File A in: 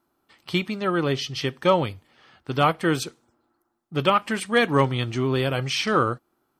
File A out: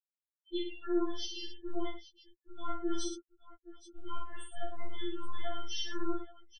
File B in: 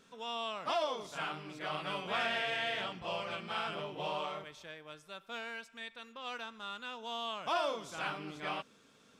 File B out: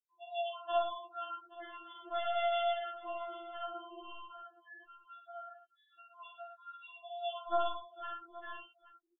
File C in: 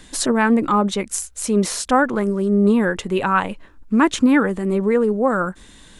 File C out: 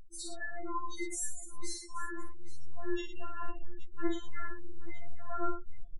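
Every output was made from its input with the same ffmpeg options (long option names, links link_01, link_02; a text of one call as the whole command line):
ffmpeg -i in.wav -filter_complex "[0:a]bandreject=frequency=2400:width=5.9,aeval=exprs='0.631*(cos(1*acos(clip(val(0)/0.631,-1,1)))-cos(1*PI/2))+0.01*(cos(3*acos(clip(val(0)/0.631,-1,1)))-cos(3*PI/2))+0.0251*(cos(4*acos(clip(val(0)/0.631,-1,1)))-cos(4*PI/2))+0.00794*(cos(8*acos(clip(val(0)/0.631,-1,1)))-cos(8*PI/2))':channel_layout=same,asubboost=boost=4.5:cutoff=52,areverse,acompressor=threshold=-30dB:ratio=12,areverse,afftfilt=real='re*gte(hypot(re,im),0.02)':imag='im*gte(hypot(re,im),0.02)':win_size=1024:overlap=0.75,asplit=2[link_01][link_02];[link_02]aecho=0:1:45|66|105|826:0.631|0.282|0.376|0.15[link_03];[link_01][link_03]amix=inputs=2:normalize=0,afftfilt=real='re*4*eq(mod(b,16),0)':imag='im*4*eq(mod(b,16),0)':win_size=2048:overlap=0.75,volume=-2.5dB" out.wav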